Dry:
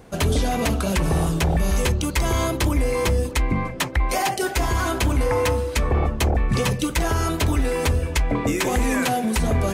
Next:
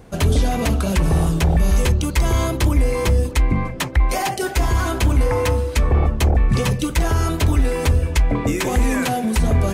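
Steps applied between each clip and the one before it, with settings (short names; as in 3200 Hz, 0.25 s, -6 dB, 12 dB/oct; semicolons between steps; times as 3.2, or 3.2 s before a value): low shelf 170 Hz +6 dB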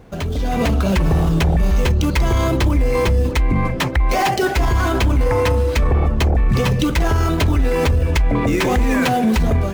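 median filter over 5 samples; limiter -17.5 dBFS, peak gain reduction 10 dB; AGC gain up to 8 dB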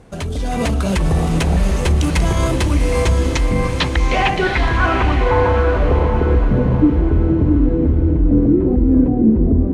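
low-pass sweep 9500 Hz -> 310 Hz, 2.96–6.55; diffused feedback echo 0.76 s, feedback 41%, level -5.5 dB; gain -1 dB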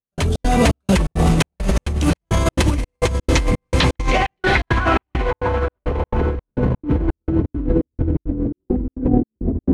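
negative-ratio compressor -17 dBFS, ratio -0.5; step gate "..xx.xxx" 169 bpm -60 dB; gain +1.5 dB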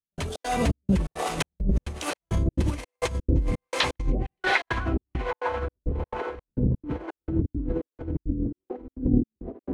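harmonic tremolo 1.2 Hz, depth 100%, crossover 420 Hz; gain -4 dB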